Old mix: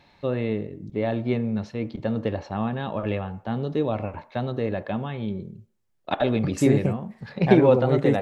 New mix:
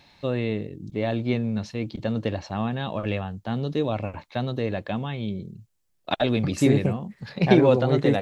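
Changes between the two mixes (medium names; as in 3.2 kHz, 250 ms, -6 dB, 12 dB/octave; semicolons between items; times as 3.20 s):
first voice: add treble shelf 3 kHz +10 dB; reverb: off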